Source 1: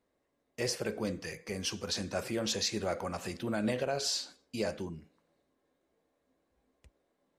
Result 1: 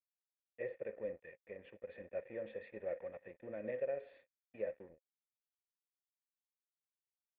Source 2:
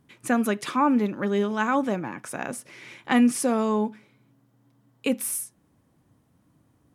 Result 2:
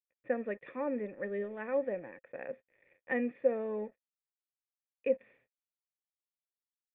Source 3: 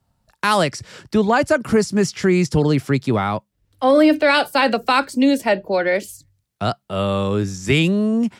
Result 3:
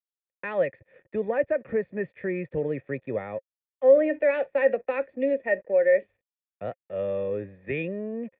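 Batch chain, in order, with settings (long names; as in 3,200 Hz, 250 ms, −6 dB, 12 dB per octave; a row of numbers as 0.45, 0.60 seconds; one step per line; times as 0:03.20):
dead-zone distortion −42.5 dBFS
formant resonators in series e
level +2 dB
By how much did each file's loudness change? −10.5, −11.0, −8.0 LU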